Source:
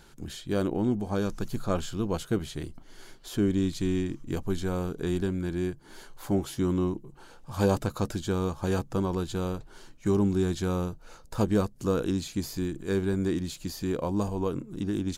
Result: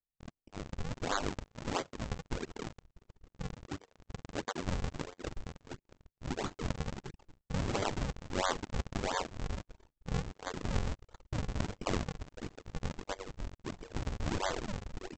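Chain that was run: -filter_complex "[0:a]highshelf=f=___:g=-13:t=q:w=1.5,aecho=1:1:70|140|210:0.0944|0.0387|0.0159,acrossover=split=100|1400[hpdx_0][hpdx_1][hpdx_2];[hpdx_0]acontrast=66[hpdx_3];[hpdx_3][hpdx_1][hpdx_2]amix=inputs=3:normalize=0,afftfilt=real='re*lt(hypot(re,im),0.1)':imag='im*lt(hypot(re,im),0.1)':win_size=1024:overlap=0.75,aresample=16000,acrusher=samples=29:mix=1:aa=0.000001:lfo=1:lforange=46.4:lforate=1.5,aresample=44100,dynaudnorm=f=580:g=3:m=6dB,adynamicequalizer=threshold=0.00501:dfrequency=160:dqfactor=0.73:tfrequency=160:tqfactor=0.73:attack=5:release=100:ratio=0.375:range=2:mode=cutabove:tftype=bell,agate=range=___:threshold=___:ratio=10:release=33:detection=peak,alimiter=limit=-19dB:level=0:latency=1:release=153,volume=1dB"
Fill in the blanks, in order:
1600, -48dB, -41dB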